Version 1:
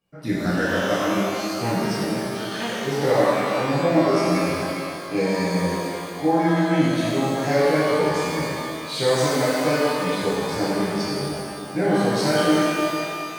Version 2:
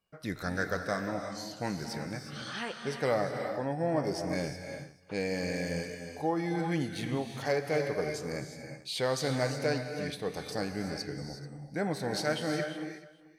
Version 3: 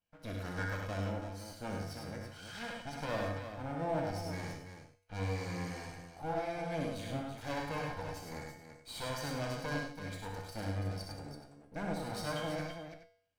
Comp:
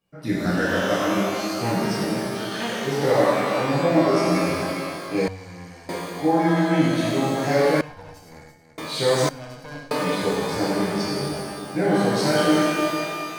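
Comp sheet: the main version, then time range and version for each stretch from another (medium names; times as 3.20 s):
1
5.28–5.89 s: from 3
7.81–8.78 s: from 3
9.29–9.91 s: from 3
not used: 2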